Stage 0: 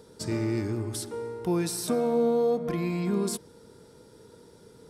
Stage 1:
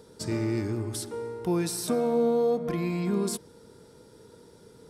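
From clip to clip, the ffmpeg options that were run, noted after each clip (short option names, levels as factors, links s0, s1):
-af anull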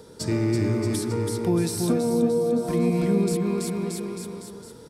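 -filter_complex "[0:a]aecho=1:1:330|627|894.3|1135|1351:0.631|0.398|0.251|0.158|0.1,acrossover=split=350[s0][s1];[s1]acompressor=threshold=0.02:ratio=6[s2];[s0][s2]amix=inputs=2:normalize=0,volume=1.88"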